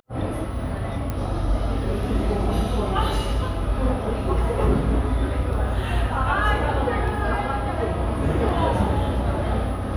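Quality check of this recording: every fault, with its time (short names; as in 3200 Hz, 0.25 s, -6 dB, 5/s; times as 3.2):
1.1 pop -14 dBFS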